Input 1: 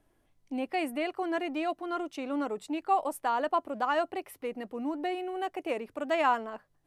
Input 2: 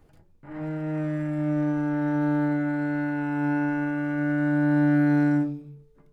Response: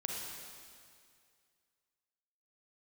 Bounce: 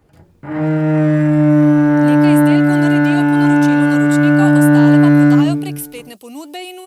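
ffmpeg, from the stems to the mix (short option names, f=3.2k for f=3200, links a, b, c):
-filter_complex "[0:a]acrossover=split=2500[a][b];[b]acompressor=threshold=-52dB:ratio=4:attack=1:release=60[c];[a][c]amix=inputs=2:normalize=0,highshelf=f=3.8k:g=11,aexciter=amount=5.7:drive=3.6:freq=2.6k,adelay=1500,volume=-5dB[d];[1:a]dynaudnorm=f=110:g=3:m=12dB,volume=-4dB,asplit=2[e][f];[f]volume=-16.5dB[g];[2:a]atrim=start_sample=2205[h];[g][h]afir=irnorm=-1:irlink=0[i];[d][e][i]amix=inputs=3:normalize=0,highpass=54,acontrast=75"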